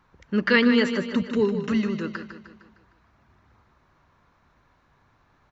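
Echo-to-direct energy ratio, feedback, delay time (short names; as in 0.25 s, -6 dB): -8.0 dB, 51%, 0.153 s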